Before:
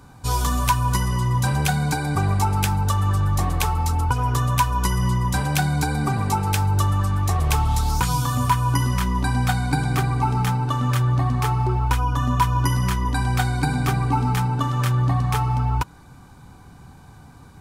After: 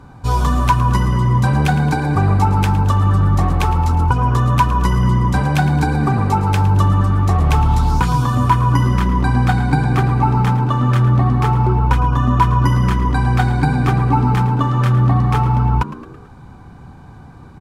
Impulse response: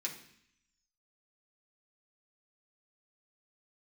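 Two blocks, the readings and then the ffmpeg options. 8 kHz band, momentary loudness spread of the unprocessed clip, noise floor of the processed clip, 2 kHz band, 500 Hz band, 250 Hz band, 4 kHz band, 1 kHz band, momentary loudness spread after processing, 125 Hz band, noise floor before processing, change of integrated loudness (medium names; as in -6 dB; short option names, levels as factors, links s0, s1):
no reading, 2 LU, -39 dBFS, +3.5 dB, +7.0 dB, +7.5 dB, -0.5 dB, +5.5 dB, 2 LU, +6.5 dB, -46 dBFS, +6.0 dB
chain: -filter_complex "[0:a]lowpass=f=1700:p=1,asplit=2[s0][s1];[s1]asplit=4[s2][s3][s4][s5];[s2]adelay=110,afreqshift=87,volume=0.178[s6];[s3]adelay=220,afreqshift=174,volume=0.0851[s7];[s4]adelay=330,afreqshift=261,volume=0.0407[s8];[s5]adelay=440,afreqshift=348,volume=0.0197[s9];[s6][s7][s8][s9]amix=inputs=4:normalize=0[s10];[s0][s10]amix=inputs=2:normalize=0,volume=2.11"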